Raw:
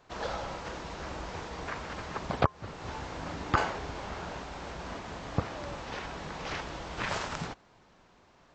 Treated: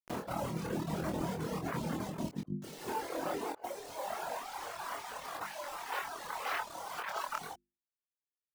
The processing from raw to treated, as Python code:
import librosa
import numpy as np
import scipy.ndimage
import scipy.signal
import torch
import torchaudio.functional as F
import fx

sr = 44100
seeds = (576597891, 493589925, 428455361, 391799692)

y = fx.tilt_eq(x, sr, slope=-3.5)
y = fx.filter_sweep_highpass(y, sr, from_hz=190.0, to_hz=960.0, start_s=1.83, end_s=4.95, q=1.3)
y = fx.peak_eq(y, sr, hz=160.0, db=6.0, octaves=0.78, at=(0.51, 2.99), fade=0.02)
y = fx.dereverb_blind(y, sr, rt60_s=0.65)
y = fx.vibrato(y, sr, rate_hz=0.72, depth_cents=13.0)
y = fx.quant_dither(y, sr, seeds[0], bits=8, dither='none')
y = fx.dereverb_blind(y, sr, rt60_s=1.9)
y = fx.hum_notches(y, sr, base_hz=50, count=7)
y = fx.over_compress(y, sr, threshold_db=-39.0, ratio=-0.5)
y = fx.doubler(y, sr, ms=25.0, db=-4)